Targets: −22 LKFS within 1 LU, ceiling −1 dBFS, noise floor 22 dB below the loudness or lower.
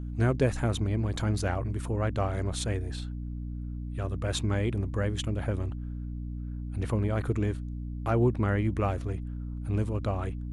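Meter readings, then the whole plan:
mains hum 60 Hz; hum harmonics up to 300 Hz; level of the hum −33 dBFS; integrated loudness −30.5 LKFS; sample peak −14.0 dBFS; target loudness −22.0 LKFS
→ mains-hum notches 60/120/180/240/300 Hz
level +8.5 dB

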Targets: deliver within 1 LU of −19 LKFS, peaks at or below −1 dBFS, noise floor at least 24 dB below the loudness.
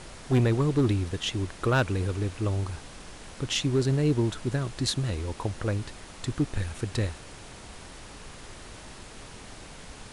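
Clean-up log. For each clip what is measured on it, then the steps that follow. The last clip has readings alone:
share of clipped samples 0.5%; peaks flattened at −17.0 dBFS; background noise floor −46 dBFS; target noise floor −52 dBFS; integrated loudness −28.0 LKFS; sample peak −17.0 dBFS; target loudness −19.0 LKFS
→ clipped peaks rebuilt −17 dBFS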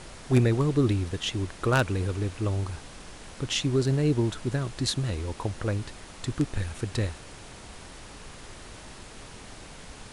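share of clipped samples 0.0%; background noise floor −46 dBFS; target noise floor −52 dBFS
→ noise reduction from a noise print 6 dB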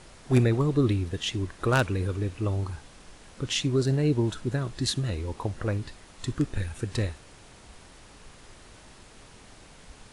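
background noise floor −52 dBFS; integrated loudness −28.0 LKFS; sample peak −8.0 dBFS; target loudness −19.0 LKFS
→ level +9 dB
brickwall limiter −1 dBFS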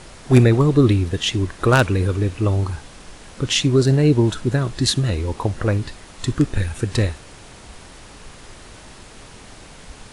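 integrated loudness −19.0 LKFS; sample peak −1.0 dBFS; background noise floor −43 dBFS

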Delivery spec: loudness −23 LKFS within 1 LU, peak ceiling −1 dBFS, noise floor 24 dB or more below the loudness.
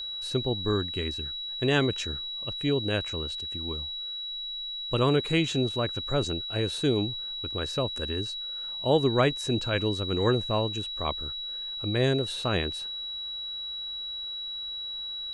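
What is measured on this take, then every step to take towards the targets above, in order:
interfering tone 3,900 Hz; level of the tone −33 dBFS; integrated loudness −28.5 LKFS; sample peak −10.0 dBFS; target loudness −23.0 LKFS
→ notch filter 3,900 Hz, Q 30
level +5.5 dB

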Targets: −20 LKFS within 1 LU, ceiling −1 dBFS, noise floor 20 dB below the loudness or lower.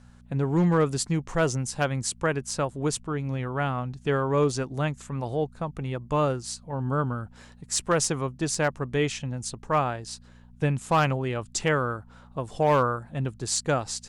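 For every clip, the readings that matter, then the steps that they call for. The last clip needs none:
share of clipped samples 0.2%; peaks flattened at −14.5 dBFS; mains hum 60 Hz; hum harmonics up to 240 Hz; level of the hum −50 dBFS; integrated loudness −27.0 LKFS; sample peak −14.5 dBFS; target loudness −20.0 LKFS
→ clipped peaks rebuilt −14.5 dBFS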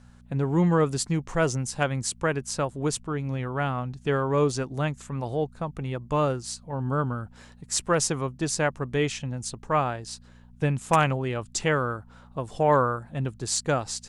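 share of clipped samples 0.0%; mains hum 60 Hz; hum harmonics up to 240 Hz; level of the hum −50 dBFS
→ hum removal 60 Hz, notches 4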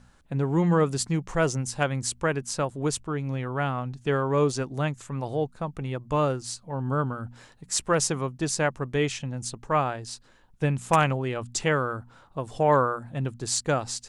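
mains hum none found; integrated loudness −27.0 LKFS; sample peak −5.5 dBFS; target loudness −20.0 LKFS
→ level +7 dB
brickwall limiter −1 dBFS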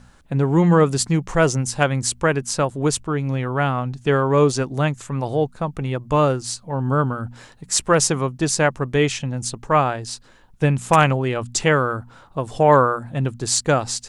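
integrated loudness −20.0 LKFS; sample peak −1.0 dBFS; background noise floor −50 dBFS

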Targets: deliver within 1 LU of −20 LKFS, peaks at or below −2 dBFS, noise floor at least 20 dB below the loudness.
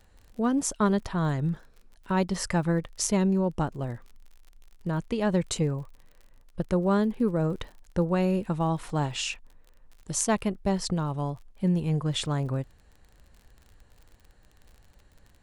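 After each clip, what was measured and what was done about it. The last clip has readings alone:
crackle rate 41 per second; integrated loudness −28.0 LKFS; sample peak −8.0 dBFS; target loudness −20.0 LKFS
→ click removal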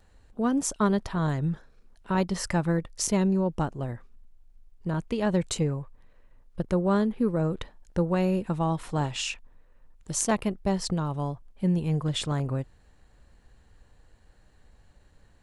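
crackle rate 0.065 per second; integrated loudness −28.0 LKFS; sample peak −8.0 dBFS; target loudness −20.0 LKFS
→ level +8 dB
brickwall limiter −2 dBFS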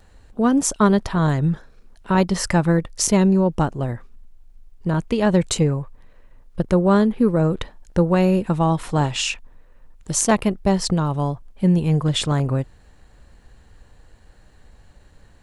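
integrated loudness −20.0 LKFS; sample peak −2.0 dBFS; background noise floor −51 dBFS

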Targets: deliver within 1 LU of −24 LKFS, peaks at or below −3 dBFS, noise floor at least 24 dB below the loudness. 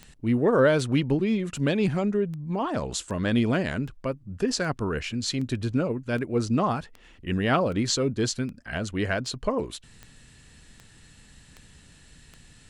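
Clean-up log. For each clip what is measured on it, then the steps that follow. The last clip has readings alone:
number of clicks 17; integrated loudness −26.5 LKFS; sample peak −10.0 dBFS; target loudness −24.0 LKFS
→ click removal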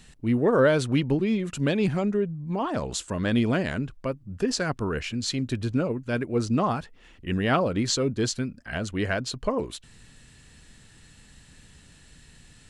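number of clicks 0; integrated loudness −26.5 LKFS; sample peak −10.0 dBFS; target loudness −24.0 LKFS
→ level +2.5 dB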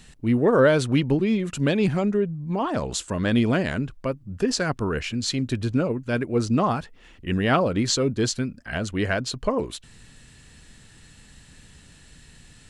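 integrated loudness −24.0 LKFS; sample peak −7.5 dBFS; background noise floor −51 dBFS

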